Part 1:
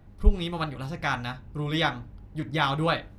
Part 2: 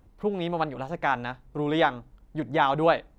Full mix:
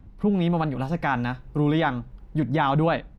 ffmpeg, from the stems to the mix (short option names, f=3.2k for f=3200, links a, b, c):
-filter_complex "[0:a]highpass=f=240:w=0.5412,highpass=f=240:w=1.3066,dynaudnorm=f=220:g=7:m=11.5dB,alimiter=limit=-16.5dB:level=0:latency=1:release=39,volume=-8.5dB[a];[1:a]lowpass=4.2k,lowshelf=f=300:t=q:w=1.5:g=7.5,adelay=3,volume=2.5dB,asplit=2[b][c];[c]apad=whole_len=140524[d];[a][d]sidechaincompress=threshold=-21dB:ratio=8:attack=41:release=641[e];[e][b]amix=inputs=2:normalize=0,alimiter=limit=-13dB:level=0:latency=1:release=18"